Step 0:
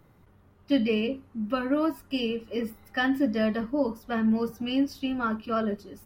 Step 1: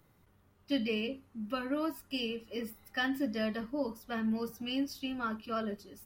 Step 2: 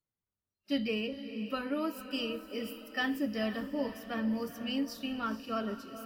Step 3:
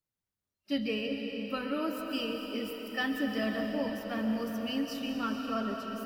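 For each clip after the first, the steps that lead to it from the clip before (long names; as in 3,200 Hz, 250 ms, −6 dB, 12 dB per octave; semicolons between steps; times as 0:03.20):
high-shelf EQ 2,600 Hz +9.5 dB; level −8.5 dB
noise reduction from a noise print of the clip's start 29 dB; feedback delay with all-pass diffusion 470 ms, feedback 48%, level −11 dB
convolution reverb RT60 4.1 s, pre-delay 95 ms, DRR 3.5 dB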